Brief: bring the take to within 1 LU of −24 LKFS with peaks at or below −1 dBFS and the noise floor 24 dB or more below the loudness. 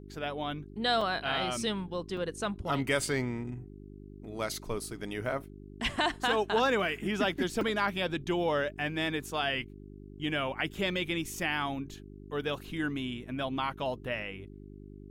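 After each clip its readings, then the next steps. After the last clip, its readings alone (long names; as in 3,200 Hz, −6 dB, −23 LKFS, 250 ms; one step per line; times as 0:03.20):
number of dropouts 3; longest dropout 3.3 ms; mains hum 50 Hz; hum harmonics up to 400 Hz; level of the hum −46 dBFS; integrated loudness −32.0 LKFS; sample peak −16.5 dBFS; target loudness −24.0 LKFS
→ repair the gap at 0:01.01/0:02.17/0:07.61, 3.3 ms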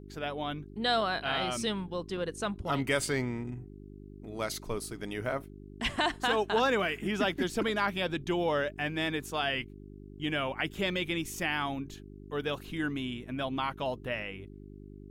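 number of dropouts 0; mains hum 50 Hz; hum harmonics up to 400 Hz; level of the hum −46 dBFS
→ hum removal 50 Hz, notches 8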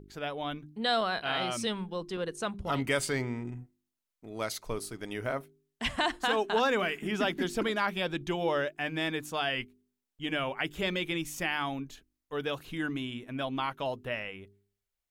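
mains hum none found; integrated loudness −32.5 LKFS; sample peak −16.5 dBFS; target loudness −24.0 LKFS
→ level +8.5 dB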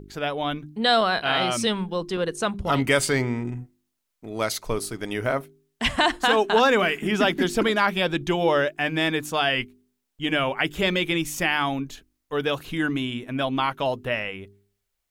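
integrated loudness −24.0 LKFS; sample peak −8.0 dBFS; background noise floor −78 dBFS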